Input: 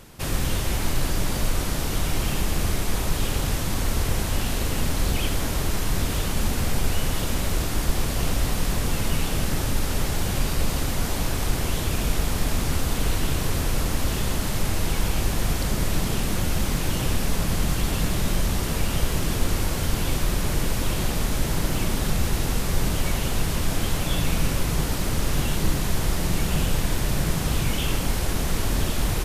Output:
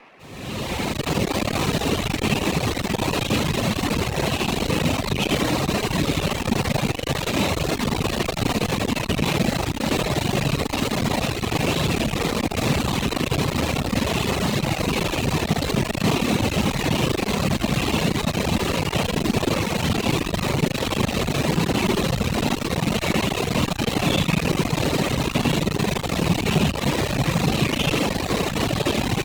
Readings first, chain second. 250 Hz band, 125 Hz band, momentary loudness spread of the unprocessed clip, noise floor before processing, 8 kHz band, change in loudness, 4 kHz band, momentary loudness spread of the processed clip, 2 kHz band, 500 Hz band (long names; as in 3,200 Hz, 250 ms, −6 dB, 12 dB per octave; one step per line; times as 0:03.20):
+7.0 dB, +2.0 dB, 1 LU, −27 dBFS, −1.5 dB, +3.5 dB, +5.0 dB, 2 LU, +5.5 dB, +7.5 dB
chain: fade in at the beginning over 1.30 s
repeating echo 79 ms, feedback 39%, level −4 dB
four-comb reverb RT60 0.38 s, combs from 29 ms, DRR 8 dB
noise in a band 160–2,400 Hz −49 dBFS
hard clipping −20 dBFS, distortion −9 dB
parametric band 4,600 Hz −8 dB 1.5 octaves
reverb reduction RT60 1.6 s
loudspeaker in its box 120–9,000 Hz, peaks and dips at 1,500 Hz −7 dB, 2,600 Hz +5 dB, 4,000 Hz +8 dB
automatic gain control gain up to 9.5 dB
windowed peak hold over 3 samples
level +1.5 dB